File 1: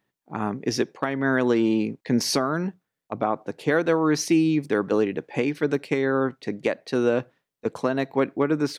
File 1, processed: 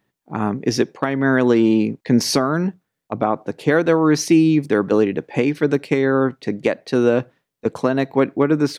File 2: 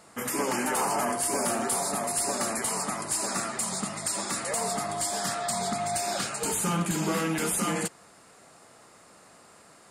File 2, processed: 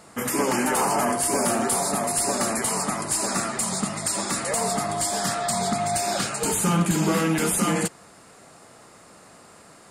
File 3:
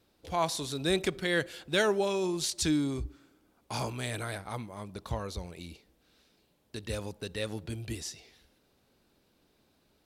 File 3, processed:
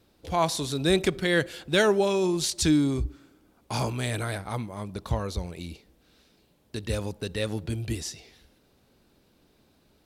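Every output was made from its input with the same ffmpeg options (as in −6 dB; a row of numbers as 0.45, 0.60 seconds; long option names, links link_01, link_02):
-af "lowshelf=frequency=340:gain=4,volume=4dB"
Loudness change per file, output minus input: +6.0, +4.5, +5.5 LU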